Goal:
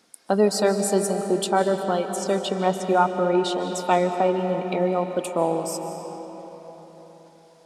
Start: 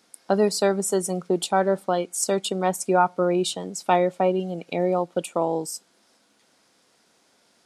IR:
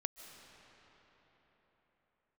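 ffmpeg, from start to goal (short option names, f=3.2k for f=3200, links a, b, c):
-filter_complex "[0:a]asettb=1/sr,asplit=3[a][b][c];[a]atrim=end=2.164[d];[b]atrim=start=2.16:end=3.7,asetpts=PTS-STARTPTS,afade=t=in:d=0.004:c=qsin,afade=t=out:st=1.536:d=0.004:c=qsin,acrossover=split=5600[e][f];[f]acompressor=threshold=-45dB:ratio=4:attack=1:release=60[g];[e][g]amix=inputs=2:normalize=0[h];[c]atrim=start=3.696[i];[d][h]acrossfade=d=0.004:c1=hsin:c2=qsin[j];[j][i]acrossfade=d=0.004:c1=qsin:c2=hsin,aphaser=in_gain=1:out_gain=1:delay=4.9:decay=0.22:speed=1.1:type=sinusoidal[k];[1:a]atrim=start_sample=2205[l];[k][l]afir=irnorm=-1:irlink=0,volume=2dB"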